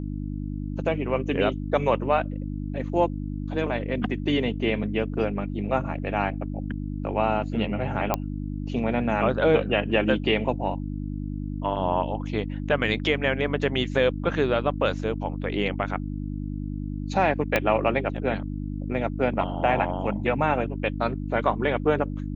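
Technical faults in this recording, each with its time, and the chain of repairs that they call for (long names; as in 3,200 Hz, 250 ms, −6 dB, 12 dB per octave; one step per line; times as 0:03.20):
mains hum 50 Hz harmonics 6 −31 dBFS
0:08.14: click −9 dBFS
0:17.56: click −7 dBFS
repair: click removal
hum removal 50 Hz, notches 6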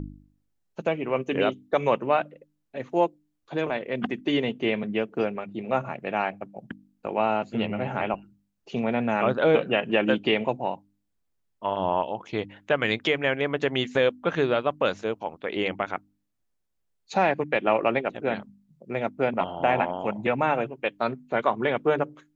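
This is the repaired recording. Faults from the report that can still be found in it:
0:17.56: click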